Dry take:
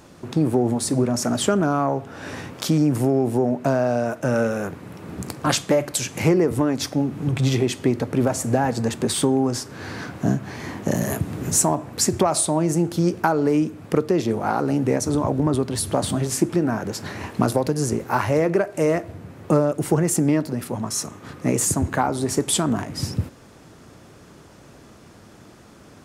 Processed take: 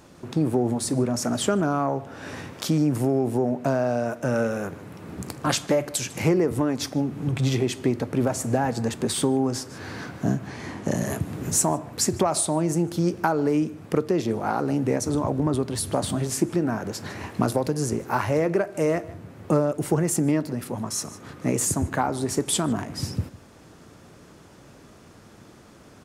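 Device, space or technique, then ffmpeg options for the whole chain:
ducked delay: -filter_complex "[0:a]asplit=3[link_01][link_02][link_03];[link_02]adelay=151,volume=-7dB[link_04];[link_03]apad=whole_len=1155447[link_05];[link_04][link_05]sidechaincompress=threshold=-40dB:ratio=4:attack=16:release=286[link_06];[link_01][link_06]amix=inputs=2:normalize=0,asettb=1/sr,asplit=3[link_07][link_08][link_09];[link_07]atrim=end=10.474[link_10];[link_08]atrim=start=10.47:end=11.2,asetpts=PTS-STARTPTS,afade=type=in:duration=0.004:curve=qsin,afade=type=out:start_time=0.726:duration=0.004:curve=qsin,lowpass=frequency=11000:width=0.5412,lowpass=frequency=11000:width=1.3066[link_11];[link_09]atrim=start=11.196[link_12];[link_10][link_11]acrossfade=duration=0.004:curve1=hsin:curve2=qsin[link_13];[link_13][link_12]acrossfade=duration=0.004:curve1=qsin:curve2=hsin,volume=-3dB"

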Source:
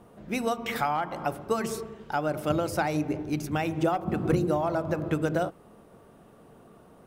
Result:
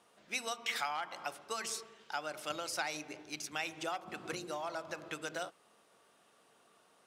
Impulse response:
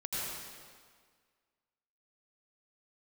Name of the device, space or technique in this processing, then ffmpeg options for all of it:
piezo pickup straight into a mixer: -af "lowpass=5600,aderivative,volume=7.5dB"

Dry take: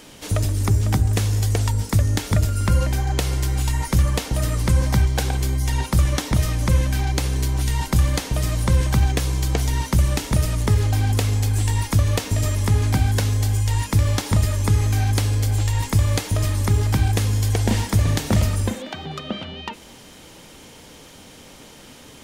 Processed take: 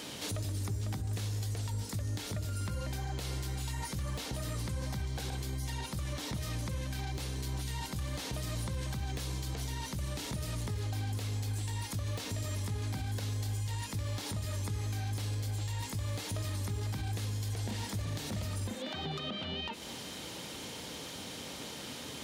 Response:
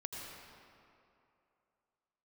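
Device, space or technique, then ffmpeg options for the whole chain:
broadcast voice chain: -af "highpass=78,deesser=0.4,acompressor=threshold=-34dB:ratio=4,equalizer=frequency=4000:width_type=o:width=0.66:gain=5,alimiter=level_in=4.5dB:limit=-24dB:level=0:latency=1:release=23,volume=-4.5dB"

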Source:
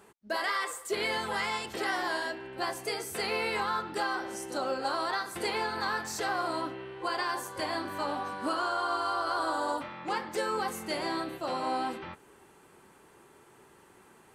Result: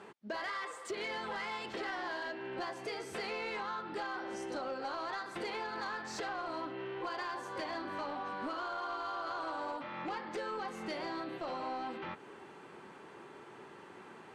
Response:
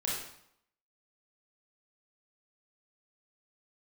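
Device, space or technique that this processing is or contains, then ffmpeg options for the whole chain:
AM radio: -af "highpass=140,lowpass=4100,acompressor=threshold=-43dB:ratio=4,asoftclip=type=tanh:threshold=-37.5dB,volume=6dB"

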